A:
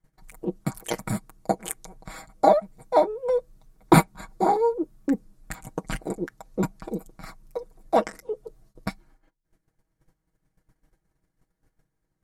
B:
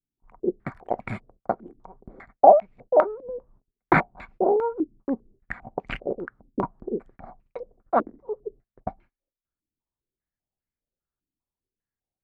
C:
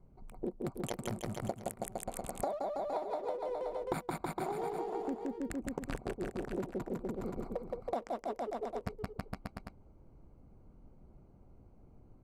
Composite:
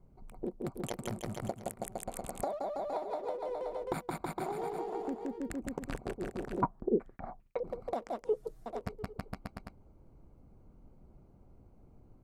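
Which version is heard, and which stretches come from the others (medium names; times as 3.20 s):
C
6.62–7.64 s: from B
8.24–8.66 s: from A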